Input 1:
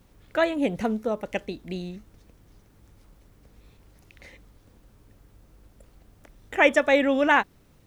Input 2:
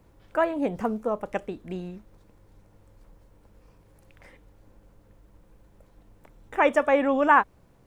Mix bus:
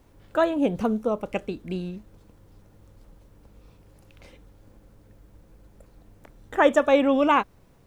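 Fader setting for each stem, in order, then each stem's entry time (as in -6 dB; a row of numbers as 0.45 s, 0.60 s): -4.5 dB, 0.0 dB; 0.00 s, 0.00 s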